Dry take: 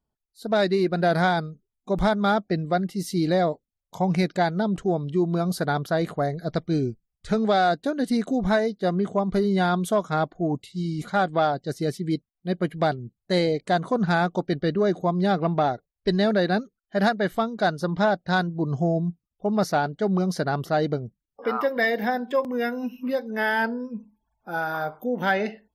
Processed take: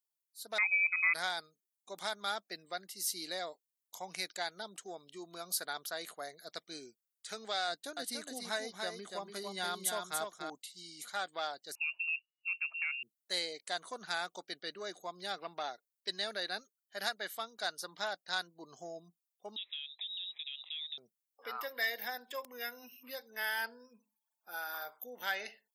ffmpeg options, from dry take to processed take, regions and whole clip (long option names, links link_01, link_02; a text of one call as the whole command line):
ffmpeg -i in.wav -filter_complex "[0:a]asettb=1/sr,asplit=3[link_01][link_02][link_03];[link_01]atrim=end=0.584[link_04];[link_02]atrim=start=0.58:end=1.14,asetpts=PTS-STARTPTS,afade=type=in:duration=0.004:curve=qsin,afade=type=out:start_time=0.556:duration=0.004:curve=qsin,lowshelf=frequency=140:gain=-5,lowpass=frequency=2300:width_type=q:width=0.5098,lowpass=frequency=2300:width_type=q:width=0.6013,lowpass=frequency=2300:width_type=q:width=0.9,lowpass=frequency=2300:width_type=q:width=2.563,afreqshift=-2700[link_05];[link_03]atrim=start=1.136[link_06];[link_04][link_05]acrossfade=duration=0.004:curve1=hsin:curve2=qsin[link_07];[link_07][link_06]acrossfade=duration=0.004:curve1=qsin:curve2=hsin,asettb=1/sr,asplit=3[link_08][link_09][link_10];[link_08]atrim=end=7.684[link_11];[link_09]atrim=start=7.68:end=10.5,asetpts=PTS-STARTPTS,afade=type=in:duration=0.004:curve=qsin,afade=type=out:start_time=2.816:duration=0.004:curve=qsin,lowshelf=frequency=180:gain=10,aecho=1:1:287:0.596,atrim=end_sample=124362[link_12];[link_10]atrim=start=10.496[link_13];[link_11][link_12]acrossfade=duration=0.004:curve1=hsin:curve2=qsin[link_14];[link_14][link_13]acrossfade=duration=0.004:curve1=qsin:curve2=hsin,asettb=1/sr,asplit=3[link_15][link_16][link_17];[link_15]atrim=end=11.754[link_18];[link_16]atrim=start=11.75:end=13.03,asetpts=PTS-STARTPTS,afade=type=in:duration=0.004:curve=qsin,afade=type=out:start_time=1.276:duration=0.004:curve=qsin,acompressor=threshold=-25dB:ratio=4:attack=3.2:release=140:knee=1:detection=peak,aeval=exprs='0.0891*(abs(mod(val(0)/0.0891+3,4)-2)-1)':channel_layout=same,lowpass=frequency=2500:width_type=q:width=0.5098,lowpass=frequency=2500:width_type=q:width=0.6013,lowpass=frequency=2500:width_type=q:width=0.9,lowpass=frequency=2500:width_type=q:width=2.563,afreqshift=-2900[link_19];[link_17]atrim=start=13.026[link_20];[link_18][link_19]acrossfade=duration=0.004:curve1=hsin:curve2=qsin[link_21];[link_21][link_20]acrossfade=duration=0.004:curve1=qsin:curve2=hsin,asettb=1/sr,asplit=3[link_22][link_23][link_24];[link_22]atrim=end=19.564[link_25];[link_23]atrim=start=19.56:end=20.98,asetpts=PTS-STARTPTS,afade=type=in:duration=0.004:curve=qsin,afade=type=out:start_time=1.416:duration=0.004:curve=qsin,equalizer=frequency=140:width=1.2:gain=-14.5,acompressor=threshold=-37dB:ratio=4:attack=3.2:release=140:knee=1:detection=peak,lowpass=frequency=3400:width_type=q:width=0.5098,lowpass=frequency=3400:width_type=q:width=0.6013,lowpass=frequency=3400:width_type=q:width=0.9,lowpass=frequency=3400:width_type=q:width=2.563,afreqshift=-4000[link_26];[link_24]atrim=start=20.976[link_27];[link_25][link_26]acrossfade=duration=0.004:curve1=hsin:curve2=qsin[link_28];[link_28][link_27]acrossfade=duration=0.004:curve1=qsin:curve2=hsin,highpass=230,aderivative,volume=2dB" out.wav